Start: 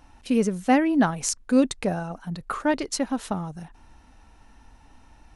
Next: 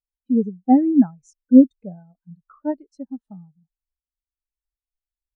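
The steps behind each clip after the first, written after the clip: spectral expander 2.5:1; gain +5.5 dB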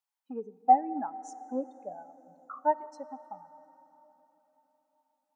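compressor 2:1, threshold -24 dBFS, peak gain reduction 10.5 dB; resonant high-pass 860 Hz, resonance Q 3.4; plate-style reverb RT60 4.2 s, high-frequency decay 0.8×, DRR 15.5 dB; gain +3 dB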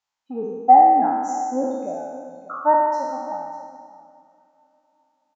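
spectral trails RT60 1.59 s; echo 0.593 s -15.5 dB; downsampling 16000 Hz; gain +7 dB

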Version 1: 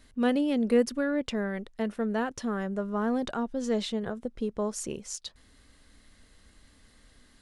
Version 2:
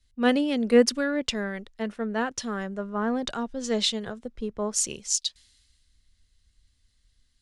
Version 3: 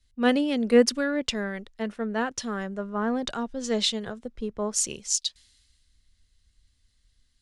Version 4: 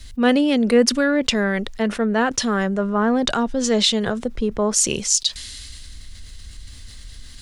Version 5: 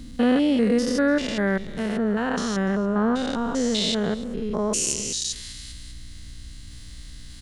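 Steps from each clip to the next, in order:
LPF 7700 Hz 12 dB/oct; high shelf 2000 Hz +10.5 dB; three-band expander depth 70%
nothing audible
fast leveller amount 50%; gain +2 dB
stepped spectrum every 0.2 s; hum 60 Hz, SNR 23 dB; echo 0.293 s -21 dB; gain -1 dB

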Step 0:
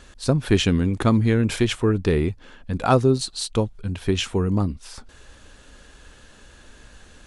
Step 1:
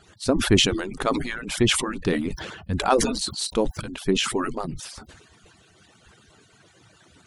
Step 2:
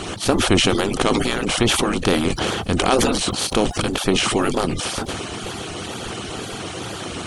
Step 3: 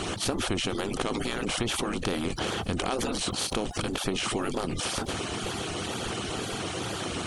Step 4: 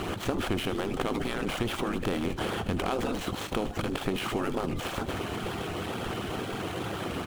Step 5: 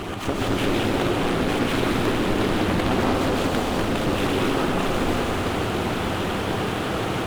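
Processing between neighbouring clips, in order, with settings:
median-filter separation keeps percussive; sustainer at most 54 dB/s
per-bin compression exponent 0.4; wow and flutter 85 cents; gain -1.5 dB
compressor 5:1, threshold -24 dBFS, peak gain reduction 12 dB; gain -2.5 dB
median filter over 9 samples; feedback echo 78 ms, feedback 55%, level -16 dB
plate-style reverb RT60 4.6 s, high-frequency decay 0.8×, pre-delay 0.11 s, DRR -5 dB; Doppler distortion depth 0.55 ms; gain +2.5 dB

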